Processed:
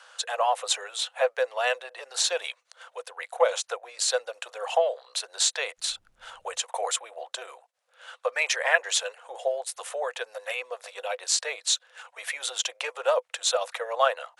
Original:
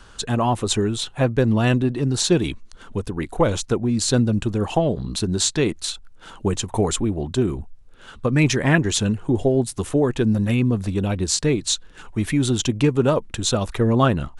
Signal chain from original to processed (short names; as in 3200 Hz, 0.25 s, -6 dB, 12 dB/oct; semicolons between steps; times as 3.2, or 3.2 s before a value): rippled Chebyshev high-pass 490 Hz, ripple 3 dB; 5.77–6.59 added noise brown -67 dBFS; AC-3 96 kbps 48000 Hz